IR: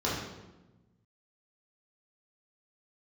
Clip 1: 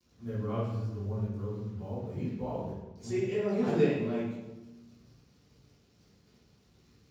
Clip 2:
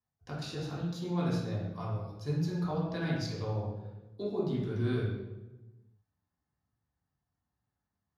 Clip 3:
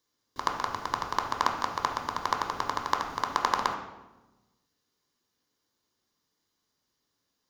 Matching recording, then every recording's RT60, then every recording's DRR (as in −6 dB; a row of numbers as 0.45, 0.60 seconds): 2; 1.1, 1.1, 1.1 seconds; −12.5, −7.5, 2.0 decibels